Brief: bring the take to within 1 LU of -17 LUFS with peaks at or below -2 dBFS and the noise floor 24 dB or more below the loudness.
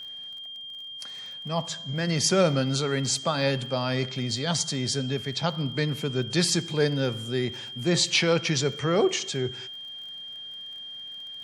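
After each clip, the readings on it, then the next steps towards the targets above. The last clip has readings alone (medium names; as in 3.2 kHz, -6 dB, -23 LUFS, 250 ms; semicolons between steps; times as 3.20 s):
tick rate 30 per s; steady tone 3.2 kHz; tone level -37 dBFS; loudness -27.0 LUFS; peak level -7.5 dBFS; loudness target -17.0 LUFS
-> de-click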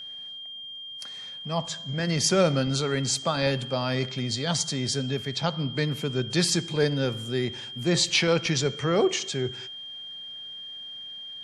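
tick rate 0.087 per s; steady tone 3.2 kHz; tone level -37 dBFS
-> band-stop 3.2 kHz, Q 30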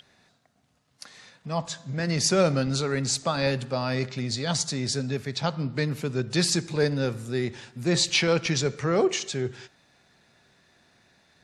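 steady tone not found; loudness -26.0 LUFS; peak level -8.0 dBFS; loudness target -17.0 LUFS
-> trim +9 dB; peak limiter -2 dBFS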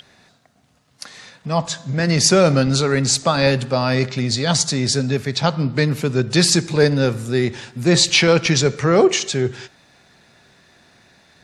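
loudness -17.5 LUFS; peak level -2.0 dBFS; noise floor -58 dBFS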